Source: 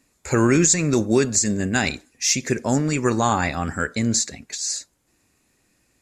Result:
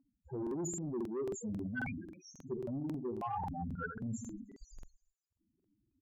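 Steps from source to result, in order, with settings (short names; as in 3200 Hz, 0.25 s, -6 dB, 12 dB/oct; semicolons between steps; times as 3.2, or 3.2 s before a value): frequency-shifting echo 0.256 s, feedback 30%, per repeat +85 Hz, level -19.5 dB; in parallel at -12 dB: Schmitt trigger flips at -19.5 dBFS; on the sum: notch 1900 Hz, Q 6.5; feedback echo 84 ms, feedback 42%, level -8 dB; loudest bins only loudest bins 4; dynamic EQ 220 Hz, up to -5 dB, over -25 dBFS, Q 2.3; low-pass opened by the level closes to 980 Hz, open at -12 dBFS; soft clip -16 dBFS, distortion -17 dB; low shelf 300 Hz -11 dB; reverse; compressor 6:1, threshold -38 dBFS, peak gain reduction 14.5 dB; reverse; crackling interface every 0.27 s, samples 2048, repeat, from 0.42; gain +1.5 dB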